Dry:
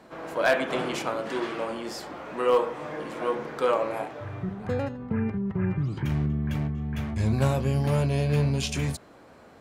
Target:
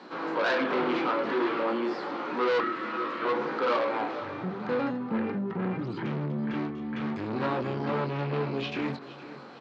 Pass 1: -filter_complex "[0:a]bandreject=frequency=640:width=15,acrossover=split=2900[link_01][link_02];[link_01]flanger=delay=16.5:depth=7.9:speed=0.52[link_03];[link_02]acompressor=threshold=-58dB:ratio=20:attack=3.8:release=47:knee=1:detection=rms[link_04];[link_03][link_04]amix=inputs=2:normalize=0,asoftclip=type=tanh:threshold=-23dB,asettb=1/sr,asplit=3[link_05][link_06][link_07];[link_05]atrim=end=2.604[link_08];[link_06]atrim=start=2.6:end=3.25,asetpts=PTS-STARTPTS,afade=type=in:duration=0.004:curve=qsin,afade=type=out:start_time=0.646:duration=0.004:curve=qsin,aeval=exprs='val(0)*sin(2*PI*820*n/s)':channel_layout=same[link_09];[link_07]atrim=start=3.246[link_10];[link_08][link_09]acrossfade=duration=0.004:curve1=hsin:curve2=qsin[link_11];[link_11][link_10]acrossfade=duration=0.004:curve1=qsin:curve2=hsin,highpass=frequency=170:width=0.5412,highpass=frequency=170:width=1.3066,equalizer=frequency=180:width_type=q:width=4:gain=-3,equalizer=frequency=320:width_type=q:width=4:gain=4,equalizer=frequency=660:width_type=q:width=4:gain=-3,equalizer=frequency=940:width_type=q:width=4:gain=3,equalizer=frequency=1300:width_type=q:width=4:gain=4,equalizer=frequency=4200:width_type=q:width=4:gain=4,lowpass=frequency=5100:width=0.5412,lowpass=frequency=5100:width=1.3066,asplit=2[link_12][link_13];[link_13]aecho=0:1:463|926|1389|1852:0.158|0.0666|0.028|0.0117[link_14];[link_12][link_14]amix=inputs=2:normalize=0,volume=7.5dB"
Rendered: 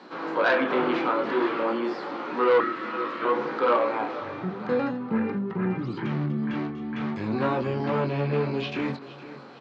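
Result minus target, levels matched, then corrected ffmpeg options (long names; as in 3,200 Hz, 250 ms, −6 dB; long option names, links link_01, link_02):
soft clipping: distortion −7 dB
-filter_complex "[0:a]bandreject=frequency=640:width=15,acrossover=split=2900[link_01][link_02];[link_01]flanger=delay=16.5:depth=7.9:speed=0.52[link_03];[link_02]acompressor=threshold=-58dB:ratio=20:attack=3.8:release=47:knee=1:detection=rms[link_04];[link_03][link_04]amix=inputs=2:normalize=0,asoftclip=type=tanh:threshold=-31dB,asettb=1/sr,asplit=3[link_05][link_06][link_07];[link_05]atrim=end=2.604[link_08];[link_06]atrim=start=2.6:end=3.25,asetpts=PTS-STARTPTS,afade=type=in:duration=0.004:curve=qsin,afade=type=out:start_time=0.646:duration=0.004:curve=qsin,aeval=exprs='val(0)*sin(2*PI*820*n/s)':channel_layout=same[link_09];[link_07]atrim=start=3.246[link_10];[link_08][link_09]acrossfade=duration=0.004:curve1=hsin:curve2=qsin[link_11];[link_11][link_10]acrossfade=duration=0.004:curve1=qsin:curve2=hsin,highpass=frequency=170:width=0.5412,highpass=frequency=170:width=1.3066,equalizer=frequency=180:width_type=q:width=4:gain=-3,equalizer=frequency=320:width_type=q:width=4:gain=4,equalizer=frequency=660:width_type=q:width=4:gain=-3,equalizer=frequency=940:width_type=q:width=4:gain=3,equalizer=frequency=1300:width_type=q:width=4:gain=4,equalizer=frequency=4200:width_type=q:width=4:gain=4,lowpass=frequency=5100:width=0.5412,lowpass=frequency=5100:width=1.3066,asplit=2[link_12][link_13];[link_13]aecho=0:1:463|926|1389|1852:0.158|0.0666|0.028|0.0117[link_14];[link_12][link_14]amix=inputs=2:normalize=0,volume=7.5dB"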